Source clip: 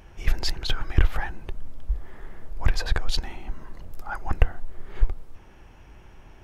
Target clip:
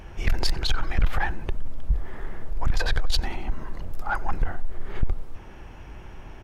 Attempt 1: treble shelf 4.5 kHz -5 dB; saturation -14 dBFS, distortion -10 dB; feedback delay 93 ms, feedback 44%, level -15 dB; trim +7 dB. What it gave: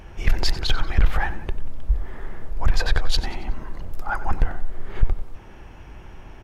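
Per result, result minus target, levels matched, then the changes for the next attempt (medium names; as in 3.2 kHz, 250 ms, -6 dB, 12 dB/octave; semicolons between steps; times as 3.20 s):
echo-to-direct +10.5 dB; saturation: distortion -5 dB
change: feedback delay 93 ms, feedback 44%, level -25.5 dB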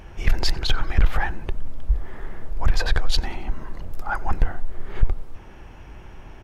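saturation: distortion -5 dB
change: saturation -20.5 dBFS, distortion -6 dB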